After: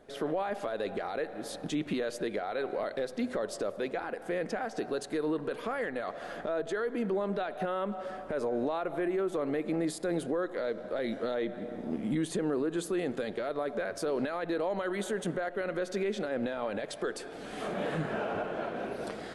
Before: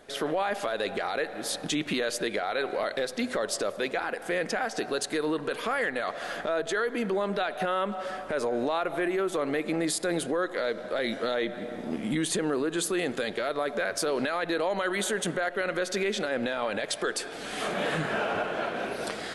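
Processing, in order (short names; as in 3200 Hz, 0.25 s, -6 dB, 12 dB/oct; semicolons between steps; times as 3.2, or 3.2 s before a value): tilt shelf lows +5.5 dB, about 1100 Hz; gain -6.5 dB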